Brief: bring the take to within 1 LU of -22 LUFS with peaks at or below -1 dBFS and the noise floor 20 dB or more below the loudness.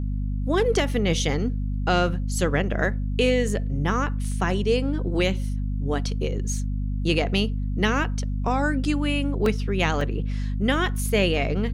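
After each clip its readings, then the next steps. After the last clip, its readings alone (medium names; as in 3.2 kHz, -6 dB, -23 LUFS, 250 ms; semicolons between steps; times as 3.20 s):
dropouts 3; longest dropout 2.4 ms; hum 50 Hz; highest harmonic 250 Hz; hum level -24 dBFS; loudness -24.5 LUFS; peak level -8.5 dBFS; loudness target -22.0 LUFS
-> interpolate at 9.46/10.01/11.37 s, 2.4 ms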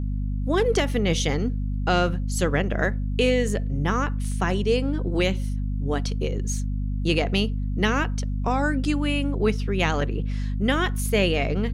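dropouts 0; hum 50 Hz; highest harmonic 250 Hz; hum level -24 dBFS
-> hum notches 50/100/150/200/250 Hz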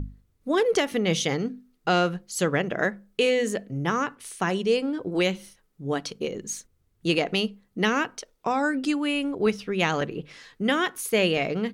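hum not found; loudness -26.0 LUFS; peak level -9.5 dBFS; loudness target -22.0 LUFS
-> trim +4 dB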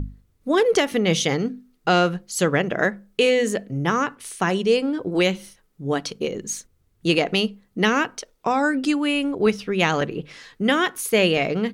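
loudness -22.0 LUFS; peak level -5.5 dBFS; noise floor -64 dBFS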